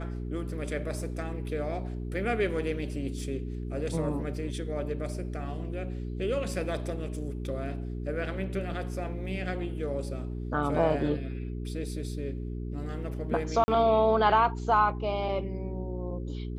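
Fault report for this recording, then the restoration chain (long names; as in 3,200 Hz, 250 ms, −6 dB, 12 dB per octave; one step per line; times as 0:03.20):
mains hum 60 Hz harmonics 7 −35 dBFS
0:13.64–0:13.68: drop-out 40 ms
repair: hum removal 60 Hz, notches 7
repair the gap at 0:13.64, 40 ms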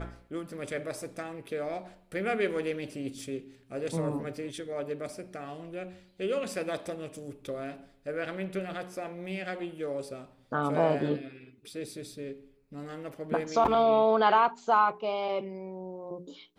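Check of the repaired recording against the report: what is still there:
none of them is left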